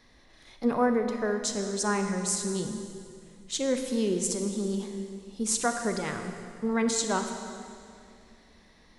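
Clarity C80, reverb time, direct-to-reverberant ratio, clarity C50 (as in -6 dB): 7.0 dB, 2.4 s, 5.5 dB, 6.0 dB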